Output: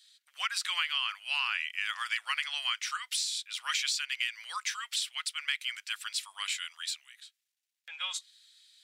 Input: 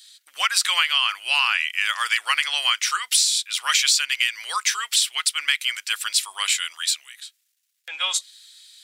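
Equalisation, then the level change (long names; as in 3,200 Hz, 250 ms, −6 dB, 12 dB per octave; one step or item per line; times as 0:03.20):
Bessel high-pass filter 1,100 Hz, order 2
high-shelf EQ 5,500 Hz −9.5 dB
−8.5 dB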